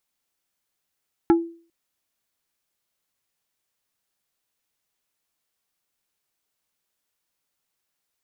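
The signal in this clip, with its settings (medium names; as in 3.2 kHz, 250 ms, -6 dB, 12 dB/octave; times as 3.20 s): wood hit plate, length 0.40 s, lowest mode 335 Hz, decay 0.42 s, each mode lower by 7 dB, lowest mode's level -10 dB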